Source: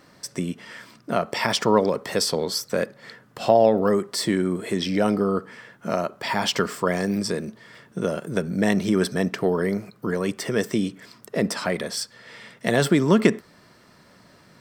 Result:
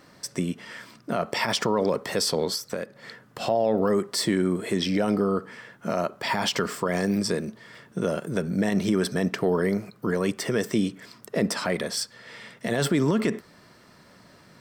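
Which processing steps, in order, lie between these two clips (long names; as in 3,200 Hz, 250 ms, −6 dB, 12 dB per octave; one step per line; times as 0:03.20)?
0:02.54–0:02.96: downward compressor 5 to 1, threshold −28 dBFS, peak gain reduction 9 dB
brickwall limiter −13.5 dBFS, peak gain reduction 10.5 dB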